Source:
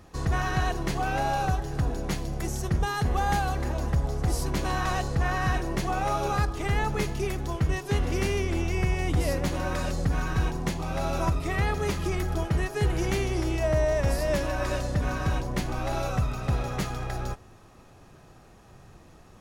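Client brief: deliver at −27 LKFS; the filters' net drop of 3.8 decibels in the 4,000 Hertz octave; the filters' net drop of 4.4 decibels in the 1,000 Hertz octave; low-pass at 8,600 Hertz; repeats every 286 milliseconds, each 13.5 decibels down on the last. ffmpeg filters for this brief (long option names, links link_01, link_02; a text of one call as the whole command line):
ffmpeg -i in.wav -af "lowpass=8600,equalizer=frequency=1000:width_type=o:gain=-6,equalizer=frequency=4000:width_type=o:gain=-4.5,aecho=1:1:286|572:0.211|0.0444,volume=2dB" out.wav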